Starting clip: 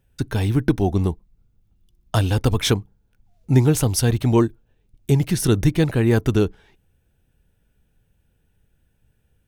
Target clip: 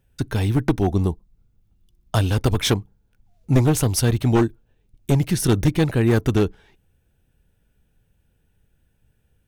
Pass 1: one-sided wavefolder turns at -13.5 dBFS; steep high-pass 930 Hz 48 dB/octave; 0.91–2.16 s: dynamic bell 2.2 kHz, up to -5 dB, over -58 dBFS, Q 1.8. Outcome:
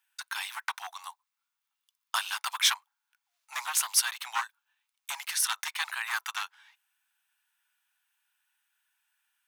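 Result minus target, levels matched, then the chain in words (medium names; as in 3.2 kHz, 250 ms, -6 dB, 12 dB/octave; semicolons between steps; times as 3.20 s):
1 kHz band +5.0 dB
one-sided wavefolder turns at -13.5 dBFS; 0.91–2.16 s: dynamic bell 2.2 kHz, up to -5 dB, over -58 dBFS, Q 1.8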